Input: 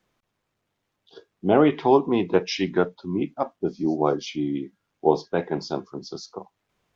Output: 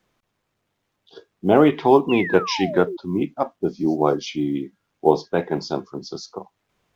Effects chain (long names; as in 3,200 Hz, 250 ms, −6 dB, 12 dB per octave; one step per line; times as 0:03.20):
sound drawn into the spectrogram fall, 0:02.09–0:02.97, 330–2,900 Hz −32 dBFS
floating-point word with a short mantissa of 6 bits
level +3 dB